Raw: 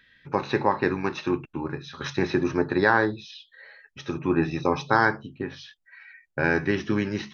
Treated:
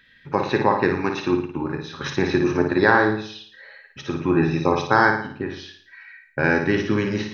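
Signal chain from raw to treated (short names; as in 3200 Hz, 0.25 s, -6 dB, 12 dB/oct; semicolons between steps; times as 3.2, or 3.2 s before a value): flutter echo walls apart 9.6 m, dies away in 0.54 s; gain +3 dB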